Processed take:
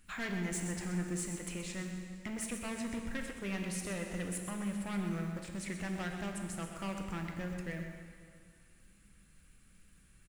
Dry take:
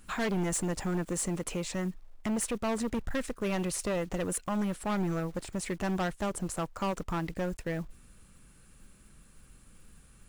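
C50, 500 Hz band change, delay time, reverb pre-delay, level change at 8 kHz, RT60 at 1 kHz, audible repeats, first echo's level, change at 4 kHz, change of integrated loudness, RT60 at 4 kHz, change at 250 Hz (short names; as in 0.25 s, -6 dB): 4.0 dB, -10.0 dB, 0.127 s, 4 ms, -6.0 dB, 2.3 s, 1, -9.5 dB, -4.5 dB, -6.0 dB, 2.1 s, -5.5 dB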